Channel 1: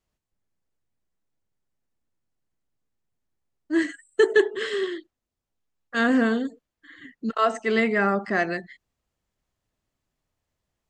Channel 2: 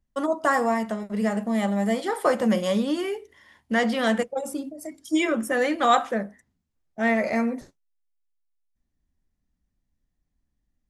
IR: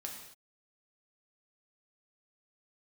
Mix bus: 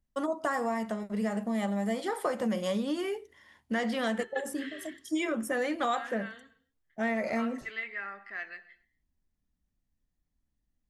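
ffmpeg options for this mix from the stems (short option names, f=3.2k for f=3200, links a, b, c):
-filter_complex "[0:a]agate=range=-32dB:threshold=-44dB:ratio=16:detection=peak,bandpass=f=2.2k:t=q:w=1.7:csg=0,volume=-11.5dB,asplit=2[a][b];[b]volume=-7dB[c];[1:a]volume=-4dB[d];[2:a]atrim=start_sample=2205[e];[c][e]afir=irnorm=-1:irlink=0[f];[a][d][f]amix=inputs=3:normalize=0,acompressor=threshold=-27dB:ratio=4"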